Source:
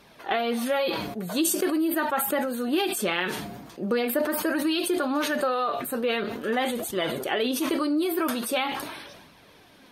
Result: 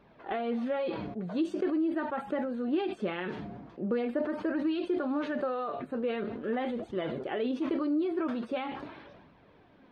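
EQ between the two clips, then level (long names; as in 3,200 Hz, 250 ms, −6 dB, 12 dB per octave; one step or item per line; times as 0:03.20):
dynamic equaliser 1,000 Hz, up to −3 dB, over −39 dBFS, Q 0.83
head-to-tape spacing loss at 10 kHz 42 dB
−2.0 dB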